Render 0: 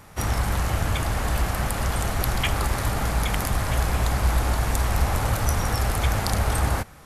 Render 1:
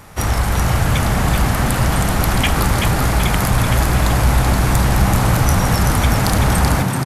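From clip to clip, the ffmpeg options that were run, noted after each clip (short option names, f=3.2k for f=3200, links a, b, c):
-filter_complex "[0:a]asplit=7[a][b][c][d][e][f][g];[b]adelay=382,afreqshift=66,volume=-5dB[h];[c]adelay=764,afreqshift=132,volume=-11dB[i];[d]adelay=1146,afreqshift=198,volume=-17dB[j];[e]adelay=1528,afreqshift=264,volume=-23.1dB[k];[f]adelay=1910,afreqshift=330,volume=-29.1dB[l];[g]adelay=2292,afreqshift=396,volume=-35.1dB[m];[a][h][i][j][k][l][m]amix=inputs=7:normalize=0,aeval=exprs='clip(val(0),-1,0.251)':c=same,acontrast=49,volume=1dB"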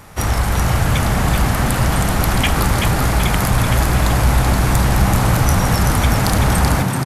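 -af anull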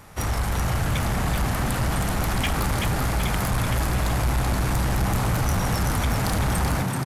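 -af "asoftclip=type=tanh:threshold=-10.5dB,volume=-6dB"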